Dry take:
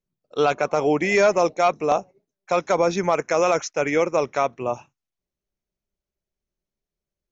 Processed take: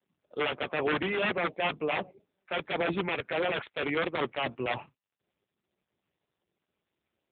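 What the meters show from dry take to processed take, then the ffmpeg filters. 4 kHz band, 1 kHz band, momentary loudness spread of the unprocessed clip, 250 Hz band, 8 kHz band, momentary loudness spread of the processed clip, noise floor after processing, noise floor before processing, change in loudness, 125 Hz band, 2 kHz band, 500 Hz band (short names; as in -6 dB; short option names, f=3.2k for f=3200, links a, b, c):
-0.5 dB, -11.0 dB, 7 LU, -8.0 dB, n/a, 6 LU, under -85 dBFS, under -85 dBFS, -9.5 dB, -7.0 dB, -4.0 dB, -12.0 dB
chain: -af "areverse,acompressor=threshold=-29dB:ratio=6,areverse,aeval=exprs='(mod(17.8*val(0)+1,2)-1)/17.8':c=same,acontrast=76,volume=-1.5dB" -ar 8000 -c:a libopencore_amrnb -b:a 6700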